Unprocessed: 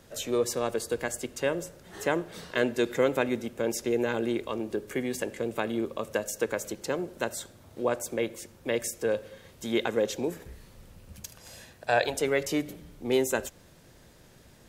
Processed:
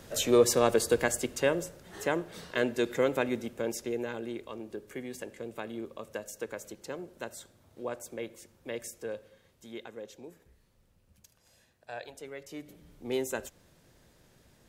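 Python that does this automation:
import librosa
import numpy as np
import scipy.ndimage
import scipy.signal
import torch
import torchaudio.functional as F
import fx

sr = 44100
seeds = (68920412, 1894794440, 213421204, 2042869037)

y = fx.gain(x, sr, db=fx.line((0.87, 5.0), (2.08, -2.5), (3.5, -2.5), (4.22, -9.0), (8.95, -9.0), (9.92, -17.0), (12.45, -17.0), (12.91, -6.5)))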